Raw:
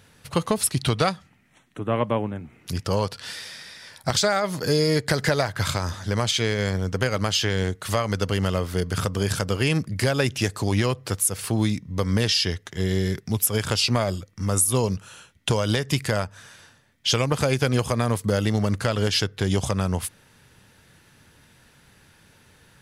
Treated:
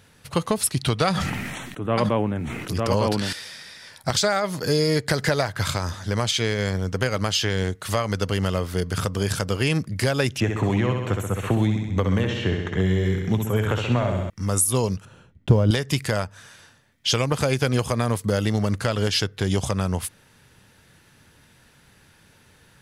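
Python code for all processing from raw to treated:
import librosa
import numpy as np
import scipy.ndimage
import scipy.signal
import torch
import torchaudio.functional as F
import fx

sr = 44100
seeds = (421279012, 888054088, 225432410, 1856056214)

y = fx.chain(x, sr, fx.echo_single(ms=904, db=-3.0),
    fx.sustainer(db_per_s=27.0), at=(1.07, 3.33))
y = fx.chain(y, sr, fx.moving_average(points=9),
    fx.echo_feedback(ms=65, feedback_pct=55, wet_db=-5.5),
    fx.band_squash(depth_pct=100), at=(10.4, 14.3))
y = fx.chain(y, sr, fx.block_float(bits=5),
    fx.lowpass(hz=2600.0, slope=6),
    fx.tilt_shelf(db=9.0, hz=650.0), at=(15.05, 15.71))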